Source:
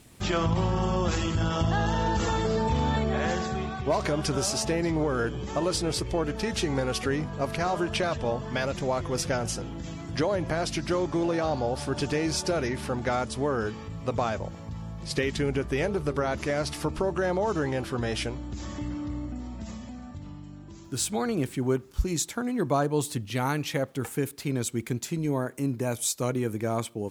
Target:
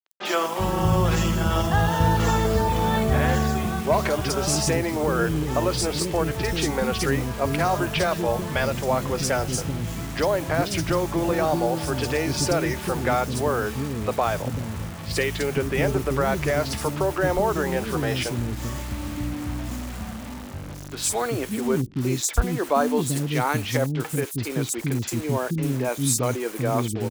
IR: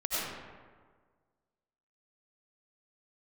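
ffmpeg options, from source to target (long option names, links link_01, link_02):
-filter_complex "[0:a]acrusher=bits=6:mix=0:aa=0.000001,acrossover=split=320|4400[link_01][link_02][link_03];[link_03]adelay=50[link_04];[link_01]adelay=390[link_05];[link_05][link_02][link_04]amix=inputs=3:normalize=0,volume=5.5dB"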